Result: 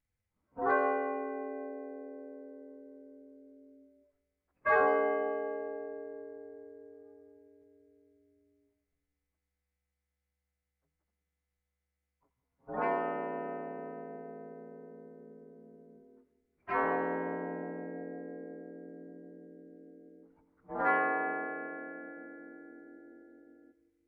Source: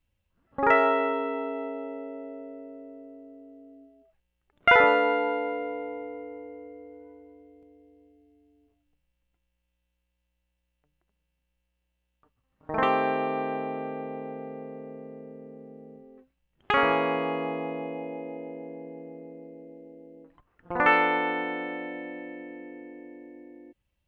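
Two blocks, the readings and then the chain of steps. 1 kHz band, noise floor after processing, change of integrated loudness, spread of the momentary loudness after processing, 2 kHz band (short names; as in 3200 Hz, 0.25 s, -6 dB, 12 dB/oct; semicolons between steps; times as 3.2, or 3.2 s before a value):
-8.0 dB, under -85 dBFS, -8.0 dB, 23 LU, -9.0 dB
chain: inharmonic rescaling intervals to 88%; split-band echo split 800 Hz, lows 0.178 s, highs 84 ms, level -14.5 dB; gain -7 dB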